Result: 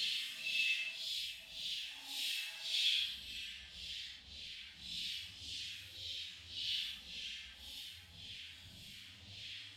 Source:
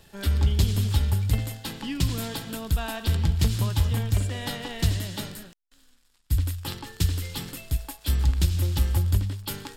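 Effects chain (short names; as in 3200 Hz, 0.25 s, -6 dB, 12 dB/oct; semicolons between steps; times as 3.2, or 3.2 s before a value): zero-crossing step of -26 dBFS; tone controls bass -12 dB, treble -11 dB; notch 1400 Hz, Q 16; limiter -29 dBFS, peak gain reduction 11 dB; EQ curve 200 Hz 0 dB, 370 Hz -22 dB, 1100 Hz -24 dB, 3200 Hz +11 dB; LFO band-pass saw down 9.6 Hz 470–4100 Hz; Paulstretch 5.3×, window 0.10 s, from 7.5; gain +1.5 dB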